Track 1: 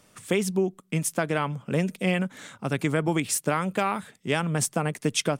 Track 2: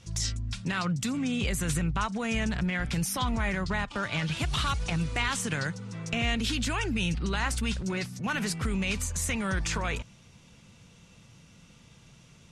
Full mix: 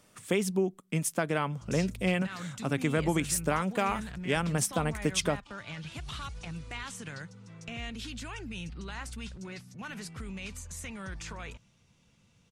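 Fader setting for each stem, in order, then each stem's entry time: −3.5, −11.0 decibels; 0.00, 1.55 seconds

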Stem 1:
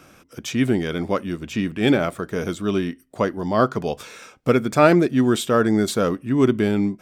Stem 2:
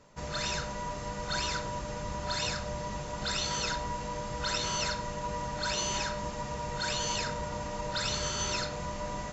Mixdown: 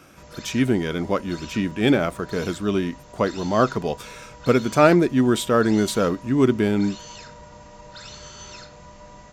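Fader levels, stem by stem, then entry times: −0.5, −8.0 decibels; 0.00, 0.00 seconds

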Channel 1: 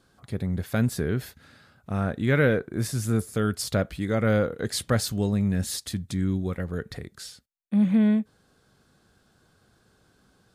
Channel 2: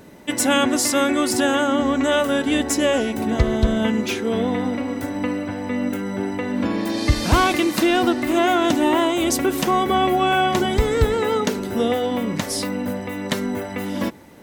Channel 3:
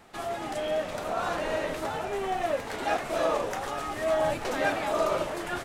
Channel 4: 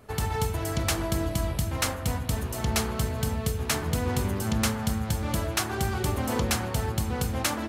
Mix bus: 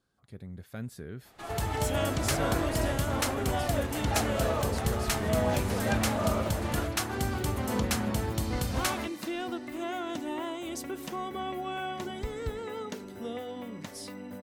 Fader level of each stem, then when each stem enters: −15.0, −17.0, −5.0, −3.5 decibels; 0.00, 1.45, 1.25, 1.40 seconds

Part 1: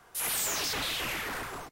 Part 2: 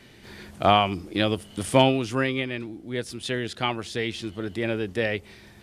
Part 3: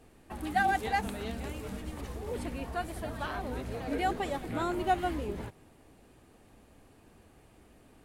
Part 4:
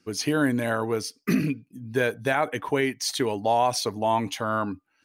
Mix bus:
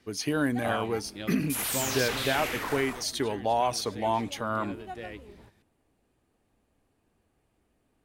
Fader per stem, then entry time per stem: 0.0, −16.0, −13.5, −4.0 decibels; 1.35, 0.00, 0.00, 0.00 seconds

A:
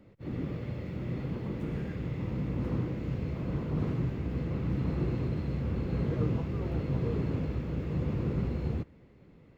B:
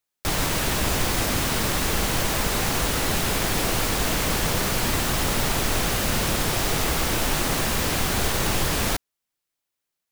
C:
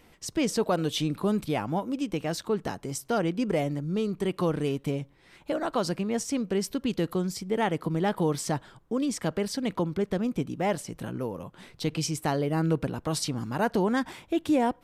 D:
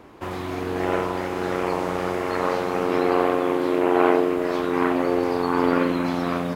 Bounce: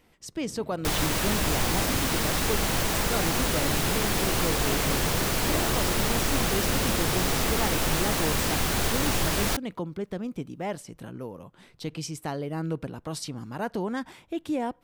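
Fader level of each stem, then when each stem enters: −12.0, −2.5, −5.0, −18.0 decibels; 0.20, 0.60, 0.00, 1.55 seconds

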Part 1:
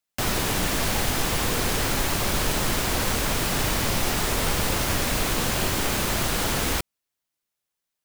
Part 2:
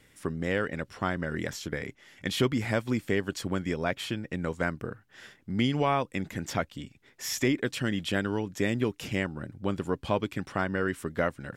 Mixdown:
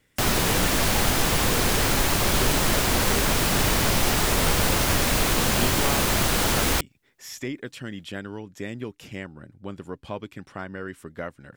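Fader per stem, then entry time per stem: +2.5, −6.0 decibels; 0.00, 0.00 seconds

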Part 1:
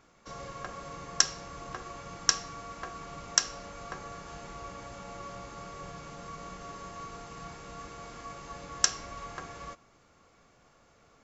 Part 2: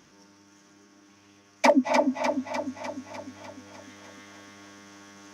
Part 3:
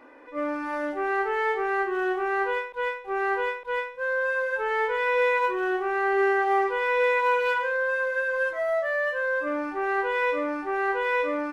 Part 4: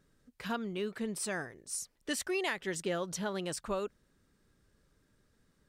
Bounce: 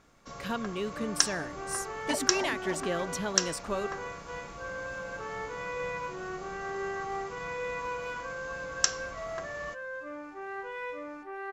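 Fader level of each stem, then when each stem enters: −1.0, −16.0, −13.0, +2.0 decibels; 0.00, 0.45, 0.60, 0.00 seconds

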